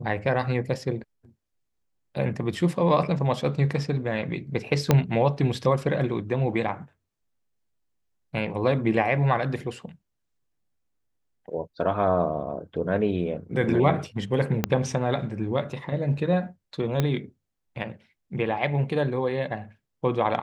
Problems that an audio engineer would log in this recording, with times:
4.91 s: pop -5 dBFS
14.64 s: pop -7 dBFS
17.00 s: pop -10 dBFS

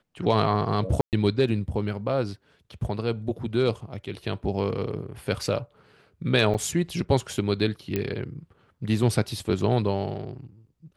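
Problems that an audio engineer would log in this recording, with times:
1.01–1.13 s: dropout 118 ms
6.54–6.55 s: dropout 5.9 ms
7.96 s: pop -13 dBFS

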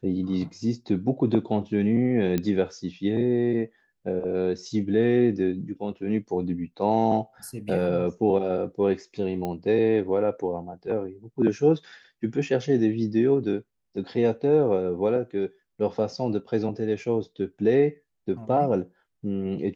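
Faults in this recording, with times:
2.38 s: pop -13 dBFS
9.45 s: pop -18 dBFS

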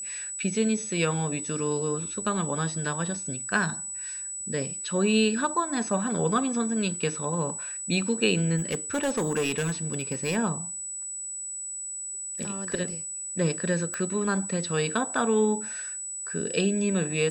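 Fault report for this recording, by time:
whine 7.9 kHz -33 dBFS
8.57–10.37 s: clipped -22.5 dBFS
13.94 s: pop -19 dBFS

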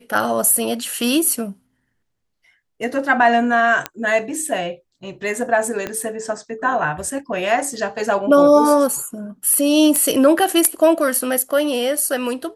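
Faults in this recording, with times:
3.86 s: pop -7 dBFS
5.87 s: pop -11 dBFS
9.96 s: pop -3 dBFS

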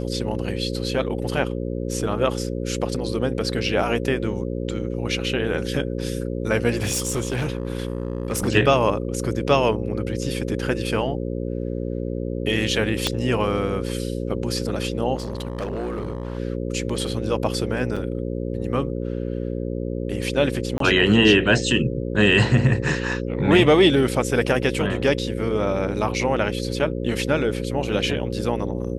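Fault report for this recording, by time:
buzz 60 Hz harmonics 9 -27 dBFS
6.76–8.49 s: clipped -19.5 dBFS
13.07 s: pop -6 dBFS
15.15–16.38 s: clipped -23 dBFS
17.96–17.97 s: dropout 5.4 ms
20.78–20.80 s: dropout 23 ms

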